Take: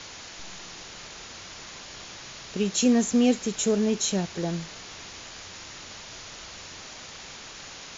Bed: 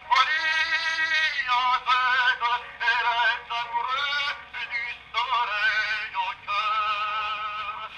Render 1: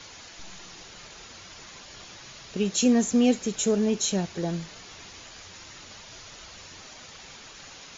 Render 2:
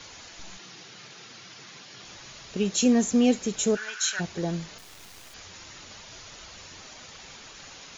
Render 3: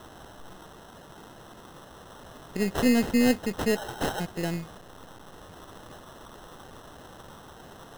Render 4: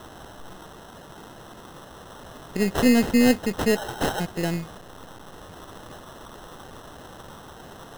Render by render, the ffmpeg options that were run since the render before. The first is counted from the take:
ffmpeg -i in.wav -af "afftdn=noise_reduction=6:noise_floor=-43" out.wav
ffmpeg -i in.wav -filter_complex "[0:a]asettb=1/sr,asplit=3[link_01][link_02][link_03];[link_01]atrim=end=0.574[link_04];[link_02]atrim=start=0.57:end=2.05,asetpts=PTS-STARTPTS,afade=type=in:duration=0.004:curve=qsin,afade=type=out:start_time=1.476:duration=0.004:curve=qsin,highpass=frequency=120:width=0.5412,highpass=frequency=120:width=1.3066,equalizer=frequency=130:width_type=q:width=4:gain=5,equalizer=frequency=590:width_type=q:width=4:gain=-5,equalizer=frequency=970:width_type=q:width=4:gain=-4,lowpass=frequency=6500:width=0.5412,lowpass=frequency=6500:width=1.3066[link_05];[link_03]atrim=start=2.046[link_06];[link_04][link_05]acrossfade=duration=0.004:curve1=hsin:curve2=qsin[link_07];[link_07][link_06]acrossfade=duration=0.004:curve1=qsin:curve2=hsin,asplit=3[link_08][link_09][link_10];[link_08]afade=type=out:start_time=3.75:duration=0.02[link_11];[link_09]highpass=frequency=1500:width_type=q:width=12,afade=type=in:start_time=3.75:duration=0.02,afade=type=out:start_time=4.19:duration=0.02[link_12];[link_10]afade=type=in:start_time=4.19:duration=0.02[link_13];[link_11][link_12][link_13]amix=inputs=3:normalize=0,asettb=1/sr,asplit=3[link_14][link_15][link_16];[link_14]atrim=end=4.784[link_17];[link_15]atrim=start=4.78:end=5.34,asetpts=PTS-STARTPTS,afade=type=in:duration=0.004:curve=qsin,afade=type=out:start_time=0.556:duration=0.004:curve=qsin,acrusher=bits=5:dc=4:mix=0:aa=0.000001[link_18];[link_16]atrim=start=5.336[link_19];[link_17][link_18]acrossfade=duration=0.004:curve1=hsin:curve2=qsin[link_20];[link_20][link_19]acrossfade=duration=0.004:curve1=qsin:curve2=hsin" out.wav
ffmpeg -i in.wav -af "aeval=exprs='if(lt(val(0),0),0.708*val(0),val(0))':channel_layout=same,acrusher=samples=19:mix=1:aa=0.000001" out.wav
ffmpeg -i in.wav -af "volume=4dB" out.wav

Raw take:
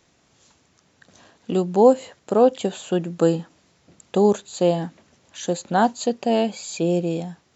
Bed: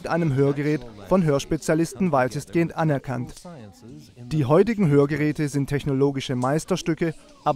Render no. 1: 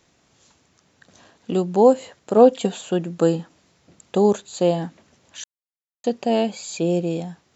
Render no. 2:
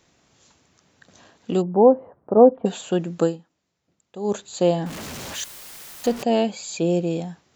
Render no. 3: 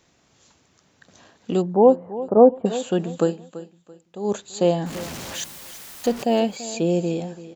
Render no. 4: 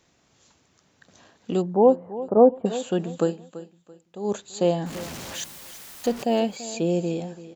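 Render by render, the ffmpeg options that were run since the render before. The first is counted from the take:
ffmpeg -i in.wav -filter_complex "[0:a]asettb=1/sr,asplit=3[link_01][link_02][link_03];[link_01]atrim=end=2.364[link_04];[link_02]atrim=start=2.36:end=2.81,asetpts=PTS-STARTPTS,afade=type=in:duration=0.004:curve=qsin,afade=type=out:start_time=0.446:duration=0.004:curve=qsin,aecho=1:1:4.3:0.65,atrim=end_sample=19845[link_05];[link_03]atrim=start=2.806[link_06];[link_04][link_05]acrossfade=duration=0.004:curve1=hsin:curve2=qsin[link_07];[link_07][link_06]acrossfade=duration=0.004:curve1=qsin:curve2=hsin,asplit=3[link_08][link_09][link_10];[link_08]atrim=end=5.44,asetpts=PTS-STARTPTS,afade=type=out:start_time=5.436:duration=0.004:curve=hsin[link_11];[link_09]atrim=start=5.44:end=6.04,asetpts=PTS-STARTPTS,volume=0[link_12];[link_10]atrim=start=6.04,asetpts=PTS-STARTPTS,afade=type=in:duration=0.004:curve=hsin[link_13];[link_11][link_12][link_13]concat=n=3:v=0:a=1" out.wav
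ffmpeg -i in.wav -filter_complex "[0:a]asplit=3[link_01][link_02][link_03];[link_01]afade=type=out:start_time=1.61:duration=0.02[link_04];[link_02]lowpass=frequency=1100:width=0.5412,lowpass=frequency=1100:width=1.3066,afade=type=in:start_time=1.61:duration=0.02,afade=type=out:start_time=2.65:duration=0.02[link_05];[link_03]afade=type=in:start_time=2.65:duration=0.02[link_06];[link_04][link_05][link_06]amix=inputs=3:normalize=0,asettb=1/sr,asplit=3[link_07][link_08][link_09];[link_07]atrim=end=4.864[link_10];[link_08]atrim=start=4.86:end=6.23,asetpts=PTS-STARTPTS,afade=type=in:duration=0.004:curve=qsin,afade=type=out:start_time=1.366:duration=0.004:curve=qsin,aeval=exprs='val(0)+0.5*0.0355*sgn(val(0))':channel_layout=same[link_11];[link_09]atrim=start=6.226[link_12];[link_10][link_11]acrossfade=duration=0.004:curve1=hsin:curve2=qsin[link_13];[link_13][link_12]acrossfade=duration=0.004:curve1=qsin:curve2=hsin,asplit=3[link_14][link_15][link_16];[link_14]atrim=end=3.42,asetpts=PTS-STARTPTS,afade=type=out:start_time=3.22:duration=0.2:curve=qua:silence=0.141254[link_17];[link_15]atrim=start=3.42:end=4.16,asetpts=PTS-STARTPTS,volume=-17dB[link_18];[link_16]atrim=start=4.16,asetpts=PTS-STARTPTS,afade=type=in:duration=0.2:curve=qua:silence=0.141254[link_19];[link_17][link_18][link_19]concat=n=3:v=0:a=1" out.wav
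ffmpeg -i in.wav -af "aecho=1:1:336|672|1008:0.168|0.0487|0.0141" out.wav
ffmpeg -i in.wav -af "volume=-2.5dB" out.wav

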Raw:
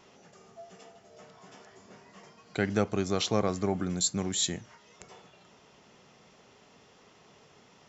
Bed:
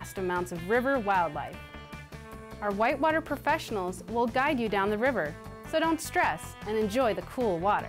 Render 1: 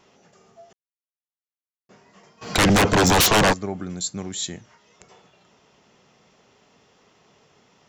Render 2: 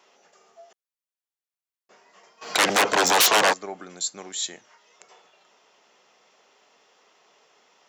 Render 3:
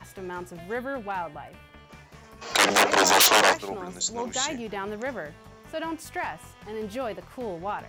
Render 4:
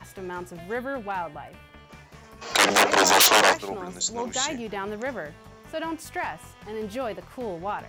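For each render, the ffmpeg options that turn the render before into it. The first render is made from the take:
ffmpeg -i in.wav -filter_complex "[0:a]asplit=3[link_01][link_02][link_03];[link_01]afade=type=out:start_time=2.41:duration=0.02[link_04];[link_02]aeval=exprs='0.237*sin(PI/2*8.91*val(0)/0.237)':channel_layout=same,afade=type=in:start_time=2.41:duration=0.02,afade=type=out:start_time=3.52:duration=0.02[link_05];[link_03]afade=type=in:start_time=3.52:duration=0.02[link_06];[link_04][link_05][link_06]amix=inputs=3:normalize=0,asplit=3[link_07][link_08][link_09];[link_07]atrim=end=0.73,asetpts=PTS-STARTPTS,afade=type=out:start_time=0.726:duration=0.004:curve=hsin[link_10];[link_08]atrim=start=0.73:end=1.89,asetpts=PTS-STARTPTS,volume=0[link_11];[link_09]atrim=start=1.89,asetpts=PTS-STARTPTS,afade=type=in:duration=0.004:curve=hsin[link_12];[link_10][link_11][link_12]concat=n=3:v=0:a=1" out.wav
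ffmpeg -i in.wav -af "highpass=500" out.wav
ffmpeg -i in.wav -i bed.wav -filter_complex "[1:a]volume=-5.5dB[link_01];[0:a][link_01]amix=inputs=2:normalize=0" out.wav
ffmpeg -i in.wav -af "volume=1dB" out.wav

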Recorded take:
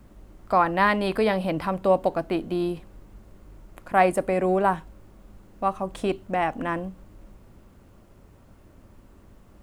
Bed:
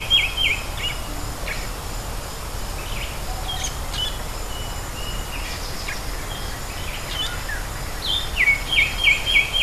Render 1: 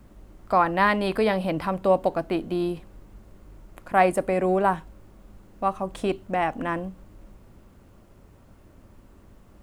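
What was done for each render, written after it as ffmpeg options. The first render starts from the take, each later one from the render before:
ffmpeg -i in.wav -af anull out.wav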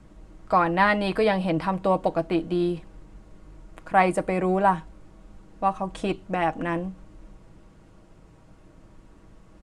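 ffmpeg -i in.wav -af "lowpass=frequency=9400:width=0.5412,lowpass=frequency=9400:width=1.3066,aecho=1:1:6.3:0.47" out.wav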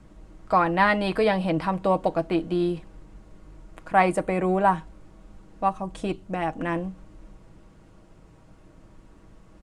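ffmpeg -i in.wav -filter_complex "[0:a]asettb=1/sr,asplit=3[link_01][link_02][link_03];[link_01]atrim=end=4.204[link_04];[link_02]atrim=start=4.2:end=4.66,asetpts=PTS-STARTPTS,afade=type=in:duration=0.004:curve=qsin,afade=type=out:start_time=0.456:duration=0.004:curve=qsin,equalizer=frequency=5000:width_type=o:width=0.24:gain=-8[link_05];[link_03]atrim=start=4.656[link_06];[link_04][link_05]acrossfade=duration=0.004:curve1=hsin:curve2=qsin[link_07];[link_07][link_06]acrossfade=duration=0.004:curve1=qsin:curve2=hsin,asettb=1/sr,asplit=3[link_08][link_09][link_10];[link_08]atrim=end=5.694[link_11];[link_09]atrim=start=5.69:end=6.61,asetpts=PTS-STARTPTS,afade=type=in:duration=0.004:curve=qsin,afade=type=out:start_time=0.916:duration=0.004:curve=qsin,equalizer=frequency=1500:width=0.31:gain=-4.5[link_12];[link_10]atrim=start=6.606[link_13];[link_11][link_12]acrossfade=duration=0.004:curve1=hsin:curve2=qsin[link_14];[link_14][link_13]acrossfade=duration=0.004:curve1=qsin:curve2=hsin" out.wav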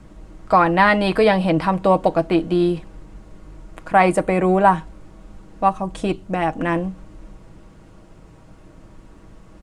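ffmpeg -i in.wav -af "volume=6.5dB,alimiter=limit=-3dB:level=0:latency=1" out.wav

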